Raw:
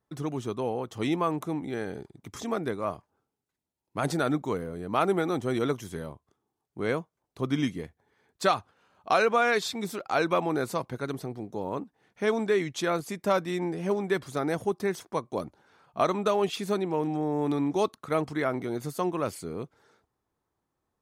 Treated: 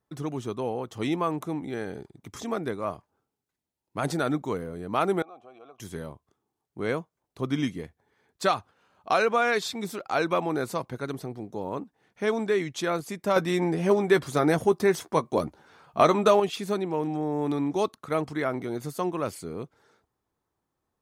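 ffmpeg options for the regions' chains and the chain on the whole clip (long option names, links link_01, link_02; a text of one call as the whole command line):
ffmpeg -i in.wav -filter_complex "[0:a]asettb=1/sr,asplit=3[link_01][link_02][link_03];[link_01]atrim=end=5.224[link_04];[link_02]atrim=start=5.22:end=5.8,asetpts=PTS-STARTPTS,afade=type=in:duration=0.004:curve=qsin,afade=type=out:start_time=0.576:duration=0.004:curve=qsin,acompressor=threshold=-29dB:ratio=6:attack=3.2:release=140:knee=1:detection=peak,asplit=3[link_05][link_06][link_07];[link_05]bandpass=frequency=730:width_type=q:width=8,volume=0dB[link_08];[link_06]bandpass=frequency=1090:width_type=q:width=8,volume=-6dB[link_09];[link_07]bandpass=frequency=2440:width_type=q:width=8,volume=-9dB[link_10];[link_08][link_09][link_10]amix=inputs=3:normalize=0[link_11];[link_03]atrim=start=5.796[link_12];[link_04][link_11]acrossfade=duration=0.004:curve1=hsin:curve2=qsin[link_13];[link_13][link_12]acrossfade=duration=0.004:curve1=qsin:curve2=hsin,asettb=1/sr,asplit=3[link_14][link_15][link_16];[link_14]atrim=end=13.364[link_17];[link_15]atrim=start=13.36:end=16.4,asetpts=PTS-STARTPTS,afade=type=in:duration=0.004:curve=qsin,afade=type=out:start_time=3.036:duration=0.004:curve=qsin,asplit=2[link_18][link_19];[link_19]adelay=13,volume=-11dB[link_20];[link_18][link_20]amix=inputs=2:normalize=0,atrim=end_sample=134064,acontrast=48[link_21];[link_16]atrim=start=16.396[link_22];[link_17][link_21]acrossfade=duration=0.004:curve1=hsin:curve2=qsin[link_23];[link_23][link_22]acrossfade=duration=0.004:curve1=qsin:curve2=hsin" out.wav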